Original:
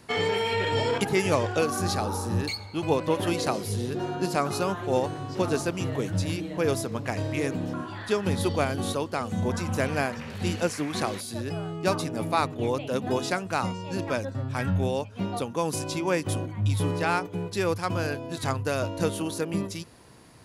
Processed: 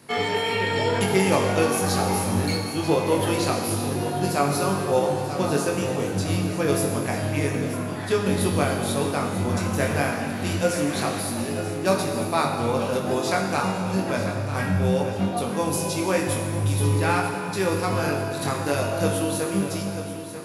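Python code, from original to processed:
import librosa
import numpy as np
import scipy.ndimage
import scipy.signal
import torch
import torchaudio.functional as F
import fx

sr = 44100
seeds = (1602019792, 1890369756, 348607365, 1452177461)

y = scipy.signal.sosfilt(scipy.signal.butter(2, 95.0, 'highpass', fs=sr, output='sos'), x)
y = fx.peak_eq(y, sr, hz=11000.0, db=8.0, octaves=0.34)
y = fx.doubler(y, sr, ms=21.0, db=-5)
y = fx.echo_feedback(y, sr, ms=940, feedback_pct=45, wet_db=-12.0)
y = fx.rev_plate(y, sr, seeds[0], rt60_s=2.3, hf_ratio=0.9, predelay_ms=0, drr_db=1.5)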